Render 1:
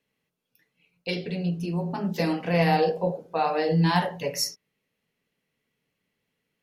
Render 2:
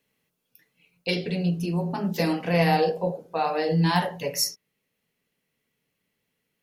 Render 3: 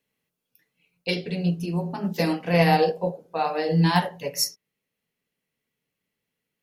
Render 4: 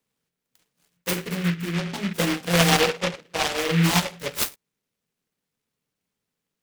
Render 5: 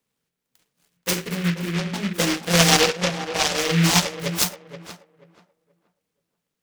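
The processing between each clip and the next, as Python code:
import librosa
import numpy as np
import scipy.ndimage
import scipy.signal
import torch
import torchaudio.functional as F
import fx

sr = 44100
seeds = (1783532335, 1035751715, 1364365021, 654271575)

y1 = fx.high_shelf(x, sr, hz=8200.0, db=8.0)
y1 = fx.rider(y1, sr, range_db=3, speed_s=2.0)
y2 = fx.upward_expand(y1, sr, threshold_db=-34.0, expansion=1.5)
y2 = y2 * 10.0 ** (3.0 / 20.0)
y3 = fx.noise_mod_delay(y2, sr, seeds[0], noise_hz=2000.0, depth_ms=0.23)
y4 = fx.dynamic_eq(y3, sr, hz=5900.0, q=1.1, threshold_db=-40.0, ratio=4.0, max_db=7)
y4 = fx.echo_tape(y4, sr, ms=480, feedback_pct=25, wet_db=-9.0, lp_hz=1600.0, drive_db=7.0, wow_cents=37)
y4 = y4 * 10.0 ** (1.0 / 20.0)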